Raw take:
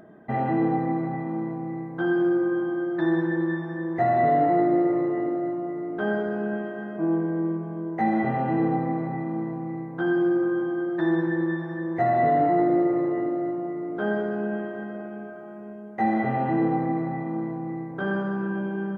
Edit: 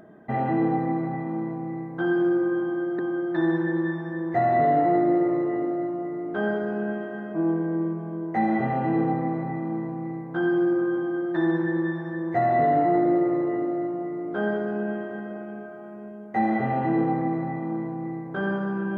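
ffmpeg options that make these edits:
-filter_complex "[0:a]asplit=2[s0][s1];[s0]atrim=end=2.992[s2];[s1]atrim=start=2.628[s3];[s2][s3]acrossfade=d=0.004:c1=hsin:c2=hsin"

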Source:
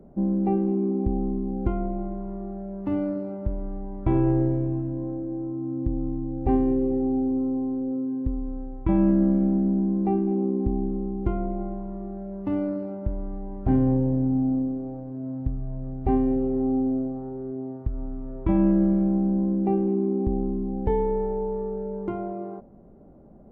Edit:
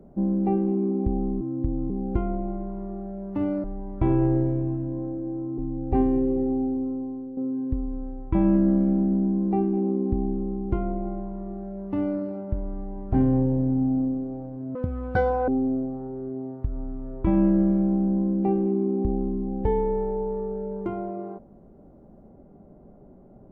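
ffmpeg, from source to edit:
-filter_complex "[0:a]asplit=8[s0][s1][s2][s3][s4][s5][s6][s7];[s0]atrim=end=1.412[s8];[s1]atrim=start=5.628:end=6.122[s9];[s2]atrim=start=1.408:end=3.152[s10];[s3]atrim=start=3.688:end=5.632[s11];[s4]atrim=start=6.118:end=7.91,asetpts=PTS-STARTPTS,afade=t=out:st=0.852:d=0.94:silence=0.334965[s12];[s5]atrim=start=7.91:end=15.294,asetpts=PTS-STARTPTS,afade=t=in:d=0.004:c=hsin:silence=0.334965[s13];[s6]atrim=start=15.29:end=16.7,asetpts=PTS-STARTPTS,asetrate=85113,aresample=44100,atrim=end_sample=32218,asetpts=PTS-STARTPTS[s14];[s7]atrim=start=16.696[s15];[s8][s9]acrossfade=d=0.004:c1=hsin:c2=hsin[s16];[s16][s10]acrossfade=d=0.004:c1=hsin:c2=hsin[s17];[s17][s11]acrossfade=d=0.004:c1=hsin:c2=hsin[s18];[s12][s13]concat=n=2:v=0:a=1[s19];[s18][s19]acrossfade=d=0.004:c1=hsin:c2=hsin[s20];[s20][s14]acrossfade=d=0.004:c1=hsin:c2=hsin[s21];[s21][s15]acrossfade=d=0.004:c1=hsin:c2=hsin"

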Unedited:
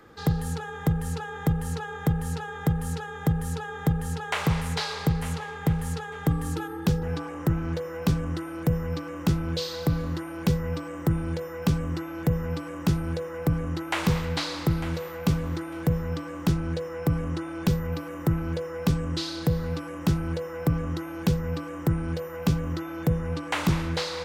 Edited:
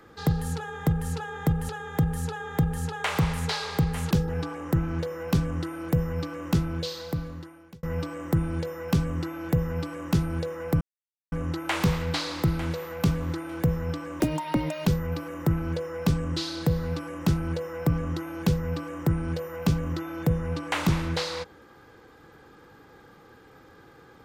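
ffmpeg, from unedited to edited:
-filter_complex "[0:a]asplit=7[s0][s1][s2][s3][s4][s5][s6];[s0]atrim=end=1.692[s7];[s1]atrim=start=2.968:end=5.392[s8];[s2]atrim=start=6.848:end=10.57,asetpts=PTS-STARTPTS,afade=t=out:st=2.422:d=1.3[s9];[s3]atrim=start=10.57:end=13.55,asetpts=PTS-STARTPTS,afade=t=in:d=0.004:c=hsin,afade=t=out:st=2.976:d=0.004:c=hsin,apad=pad_dur=0.51[s10];[s4]atrim=start=13.55:end=16.434,asetpts=PTS-STARTPTS,afade=t=in:d=0.004:c=hsin[s11];[s5]atrim=start=16.43:end=17.66,asetpts=PTS-STARTPTS,asetrate=82467,aresample=44100[s12];[s6]atrim=start=17.656[s13];[s7][s8]acrossfade=d=0.004:c1=hsin:c2=hsin[s14];[s9][s10][s11]concat=n=3:v=0:a=1[s15];[s14][s15]acrossfade=d=0.004:c1=hsin:c2=hsin[s16];[s16][s12]acrossfade=d=0.004:c1=hsin:c2=hsin[s17];[s17][s13]acrossfade=d=0.004:c1=hsin:c2=hsin"

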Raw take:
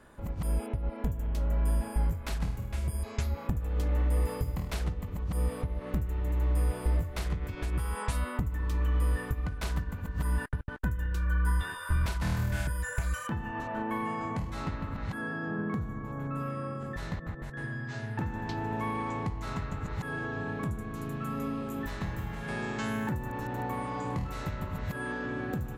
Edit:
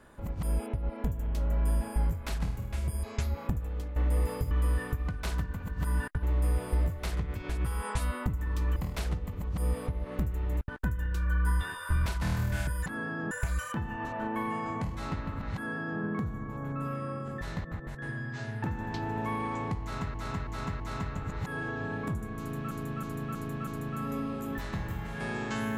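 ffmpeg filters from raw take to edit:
-filter_complex "[0:a]asplit=15[s0][s1][s2][s3][s4][s5][s6][s7][s8][s9][s10][s11][s12][s13][s14];[s0]atrim=end=3.96,asetpts=PTS-STARTPTS,afade=t=out:st=3.53:d=0.43:silence=0.223872[s15];[s1]atrim=start=3.96:end=4.512,asetpts=PTS-STARTPTS,afade=t=in:d=0.004:c=hsin:silence=0.223872[s16];[s2]atrim=start=8.888:end=10.612[s17];[s3]atrim=start=6.358:end=8.892[s18];[s4]atrim=start=4.508:end=6.362[s19];[s5]atrim=start=10.608:end=12.862[s20];[s6]atrim=start=15.098:end=15.552[s21];[s7]atrim=start=12.858:end=19.692[s22];[s8]atrim=start=19.358:end=19.692[s23];[s9]atrim=start=19.358:end=19.692[s24];[s10]atrim=start=19.358:end=21.272[s25];[s11]atrim=start=20.948:end=21.272[s26];[s12]atrim=start=20.948:end=21.272[s27];[s13]atrim=start=20.948:end=21.272[s28];[s14]atrim=start=20.948[s29];[s15][s16]concat=n=2:v=0:a=1[s30];[s30][s17]acrossfade=d=0.004:c1=hsin:c2=hsin[s31];[s31][s18]acrossfade=d=0.004:c1=hsin:c2=hsin[s32];[s32][s19]acrossfade=d=0.004:c1=hsin:c2=hsin[s33];[s33][s20]acrossfade=d=0.004:c1=hsin:c2=hsin[s34];[s34][s21]acrossfade=d=0.004:c1=hsin:c2=hsin[s35];[s35][s22]acrossfade=d=0.004:c1=hsin:c2=hsin[s36];[s36][s23]acrossfade=d=0.004:c1=hsin:c2=hsin[s37];[s37][s24]acrossfade=d=0.004:c1=hsin:c2=hsin[s38];[s38][s25]acrossfade=d=0.004:c1=hsin:c2=hsin[s39];[s39][s26]acrossfade=d=0.004:c1=hsin:c2=hsin[s40];[s40][s27]acrossfade=d=0.004:c1=hsin:c2=hsin[s41];[s41][s28]acrossfade=d=0.004:c1=hsin:c2=hsin[s42];[s42][s29]acrossfade=d=0.004:c1=hsin:c2=hsin"

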